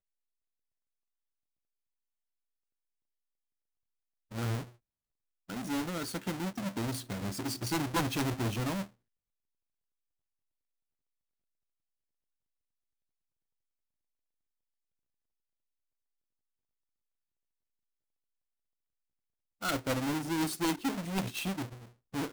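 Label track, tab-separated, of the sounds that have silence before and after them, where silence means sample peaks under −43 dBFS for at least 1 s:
4.320000	8.840000	sound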